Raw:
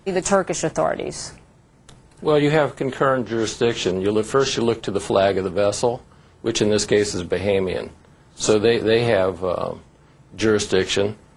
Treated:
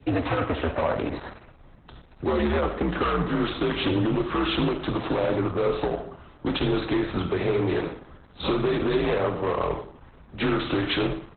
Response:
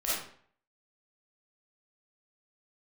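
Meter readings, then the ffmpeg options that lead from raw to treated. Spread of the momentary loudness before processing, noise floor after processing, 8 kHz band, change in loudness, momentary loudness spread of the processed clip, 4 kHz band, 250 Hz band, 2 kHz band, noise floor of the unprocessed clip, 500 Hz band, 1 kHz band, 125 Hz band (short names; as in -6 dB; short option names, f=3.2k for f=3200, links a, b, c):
10 LU, -51 dBFS, under -40 dB, -5.5 dB, 8 LU, -5.0 dB, -2.0 dB, -4.5 dB, -52 dBFS, -7.0 dB, -3.5 dB, -2.0 dB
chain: -filter_complex "[0:a]asoftclip=type=tanh:threshold=-7dB,aeval=exprs='val(0)+0.00355*(sin(2*PI*50*n/s)+sin(2*PI*2*50*n/s)/2+sin(2*PI*3*50*n/s)/3+sin(2*PI*4*50*n/s)/4+sin(2*PI*5*50*n/s)/5)':c=same,equalizer=f=7.1k:w=2.4:g=-11,acrossover=split=99|220[a][b][c];[a]acompressor=threshold=-42dB:ratio=4[d];[b]acompressor=threshold=-30dB:ratio=4[e];[c]acompressor=threshold=-23dB:ratio=4[f];[d][e][f]amix=inputs=3:normalize=0,aecho=1:1:63|126|189|252|315:0.133|0.0707|0.0375|0.0199|0.0105,afreqshift=-76,adynamicequalizer=threshold=0.00562:dfrequency=1100:dqfactor=1.7:tfrequency=1100:tqfactor=1.7:attack=5:release=100:ratio=0.375:range=3.5:mode=boostabove:tftype=bell,highpass=44,bandreject=f=7.1k:w=6.5,volume=21.5dB,asoftclip=hard,volume=-21.5dB,asplit=2[g][h];[1:a]atrim=start_sample=2205,lowpass=5.7k[i];[h][i]afir=irnorm=-1:irlink=0,volume=-12dB[j];[g][j]amix=inputs=2:normalize=0,volume=1dB" -ar 48000 -c:a libopus -b:a 8k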